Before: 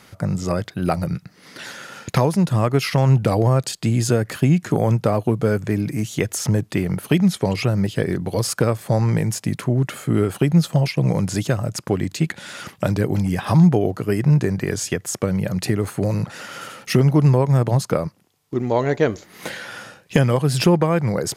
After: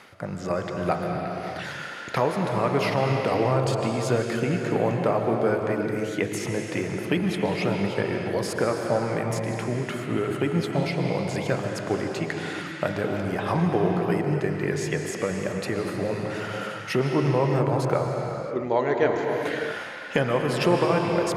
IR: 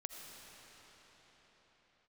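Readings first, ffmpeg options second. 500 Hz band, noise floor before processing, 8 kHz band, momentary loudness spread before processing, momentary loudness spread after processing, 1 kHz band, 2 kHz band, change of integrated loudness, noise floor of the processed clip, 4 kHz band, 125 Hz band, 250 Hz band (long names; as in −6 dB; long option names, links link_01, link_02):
−1.5 dB, −53 dBFS, −10.0 dB, 11 LU, 7 LU, 0.0 dB, 0.0 dB, −6.0 dB, −36 dBFS, −5.0 dB, −10.0 dB, −6.5 dB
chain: -filter_complex "[0:a]bass=frequency=250:gain=-12,treble=frequency=4000:gain=-11,bandreject=frequency=51.98:width_type=h:width=4,bandreject=frequency=103.96:width_type=h:width=4,bandreject=frequency=155.94:width_type=h:width=4,bandreject=frequency=207.92:width_type=h:width=4,bandreject=frequency=259.9:width_type=h:width=4,bandreject=frequency=311.88:width_type=h:width=4,bandreject=frequency=363.86:width_type=h:width=4,bandreject=frequency=415.84:width_type=h:width=4,bandreject=frequency=467.82:width_type=h:width=4,bandreject=frequency=519.8:width_type=h:width=4,bandreject=frequency=571.78:width_type=h:width=4,bandreject=frequency=623.76:width_type=h:width=4,bandreject=frequency=675.74:width_type=h:width=4,bandreject=frequency=727.72:width_type=h:width=4,bandreject=frequency=779.7:width_type=h:width=4,bandreject=frequency=831.68:width_type=h:width=4,bandreject=frequency=883.66:width_type=h:width=4,bandreject=frequency=935.64:width_type=h:width=4,bandreject=frequency=987.62:width_type=h:width=4,bandreject=frequency=1039.6:width_type=h:width=4,bandreject=frequency=1091.58:width_type=h:width=4,bandreject=frequency=1143.56:width_type=h:width=4,bandreject=frequency=1195.54:width_type=h:width=4,bandreject=frequency=1247.52:width_type=h:width=4,bandreject=frequency=1299.5:width_type=h:width=4,bandreject=frequency=1351.48:width_type=h:width=4,bandreject=frequency=1403.46:width_type=h:width=4,bandreject=frequency=1455.44:width_type=h:width=4,bandreject=frequency=1507.42:width_type=h:width=4,bandreject=frequency=1559.4:width_type=h:width=4,bandreject=frequency=1611.38:width_type=h:width=4,bandreject=frequency=1663.36:width_type=h:width=4,areverse,acompressor=mode=upward:threshold=-28dB:ratio=2.5,areverse[link_01];[1:a]atrim=start_sample=2205,afade=type=out:start_time=0.42:duration=0.01,atrim=end_sample=18963,asetrate=24255,aresample=44100[link_02];[link_01][link_02]afir=irnorm=-1:irlink=0"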